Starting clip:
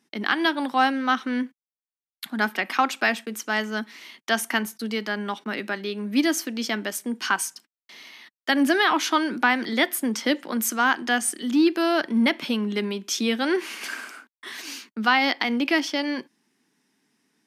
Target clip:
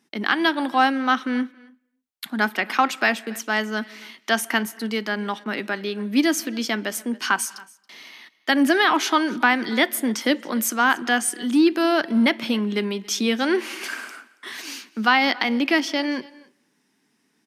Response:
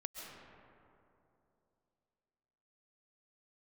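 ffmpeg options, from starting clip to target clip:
-filter_complex "[0:a]aecho=1:1:277:0.0708,asplit=2[link_01][link_02];[1:a]atrim=start_sample=2205,afade=type=out:start_time=0.37:duration=0.01,atrim=end_sample=16758,lowpass=3900[link_03];[link_02][link_03]afir=irnorm=-1:irlink=0,volume=-16.5dB[link_04];[link_01][link_04]amix=inputs=2:normalize=0,volume=1.5dB"

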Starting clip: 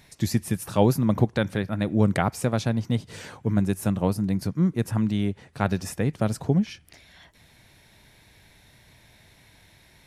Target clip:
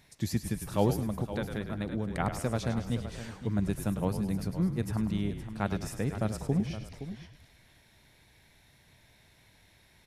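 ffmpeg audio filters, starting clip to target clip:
ffmpeg -i in.wav -filter_complex "[0:a]asplit=2[link_01][link_02];[link_02]asplit=6[link_03][link_04][link_05][link_06][link_07][link_08];[link_03]adelay=103,afreqshift=-37,volume=-10dB[link_09];[link_04]adelay=206,afreqshift=-74,volume=-15.7dB[link_10];[link_05]adelay=309,afreqshift=-111,volume=-21.4dB[link_11];[link_06]adelay=412,afreqshift=-148,volume=-27dB[link_12];[link_07]adelay=515,afreqshift=-185,volume=-32.7dB[link_13];[link_08]adelay=618,afreqshift=-222,volume=-38.4dB[link_14];[link_09][link_10][link_11][link_12][link_13][link_14]amix=inputs=6:normalize=0[link_15];[link_01][link_15]amix=inputs=2:normalize=0,asettb=1/sr,asplit=3[link_16][link_17][link_18];[link_16]atrim=end=0.954[link_19];[link_17]atrim=start=0.95:end=2.2,asetpts=PTS-STARTPTS,afade=type=in:duration=0.004:curve=qsin,afade=type=out:start_time=1.246:duration=0.004:curve=qsin,acompressor=threshold=-22dB:ratio=6[link_20];[link_18]atrim=start=2.196[link_21];[link_19][link_20]acrossfade=duration=0.004:curve1=hsin:curve2=qsin[link_22];[link_22][link_21]acrossfade=duration=0.004:curve1=qsin:curve2=hsin,asplit=2[link_23][link_24];[link_24]aecho=0:1:518:0.251[link_25];[link_23][link_25]amix=inputs=2:normalize=0,volume=-7dB" out.wav

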